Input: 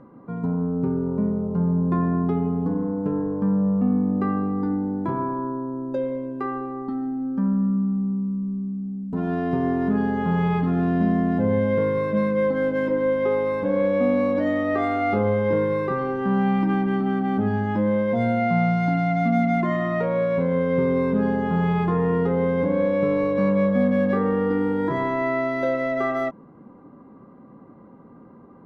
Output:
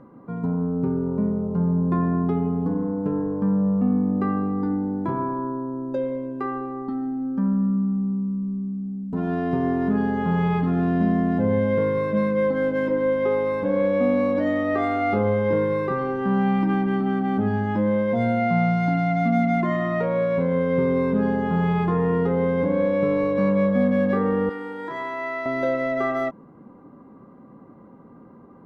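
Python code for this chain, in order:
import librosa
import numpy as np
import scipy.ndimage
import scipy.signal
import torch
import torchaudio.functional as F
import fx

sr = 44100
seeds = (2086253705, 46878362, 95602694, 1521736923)

y = fx.highpass(x, sr, hz=1200.0, slope=6, at=(24.49, 25.46))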